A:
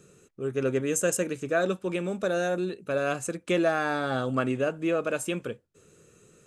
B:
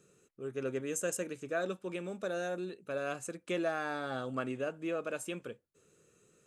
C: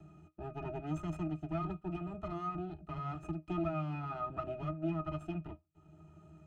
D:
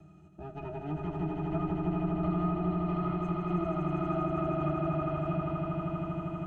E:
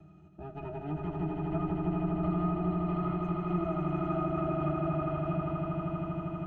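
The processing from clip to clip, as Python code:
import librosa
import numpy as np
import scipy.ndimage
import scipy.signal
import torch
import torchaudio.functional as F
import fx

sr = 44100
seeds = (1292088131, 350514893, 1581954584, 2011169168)

y1 = fx.low_shelf(x, sr, hz=140.0, db=-6.5)
y1 = y1 * 10.0 ** (-8.5 / 20.0)
y2 = fx.lower_of_two(y1, sr, delay_ms=0.96)
y2 = fx.octave_resonator(y2, sr, note='D#', decay_s=0.12)
y2 = fx.band_squash(y2, sr, depth_pct=40)
y2 = y2 * 10.0 ** (12.5 / 20.0)
y3 = fx.comb_fb(y2, sr, f0_hz=93.0, decay_s=0.3, harmonics='all', damping=0.0, mix_pct=60)
y3 = fx.env_lowpass_down(y3, sr, base_hz=1100.0, full_db=-37.0)
y3 = fx.echo_swell(y3, sr, ms=80, loudest=8, wet_db=-6)
y3 = y3 * 10.0 ** (6.5 / 20.0)
y4 = fx.air_absorb(y3, sr, metres=100.0)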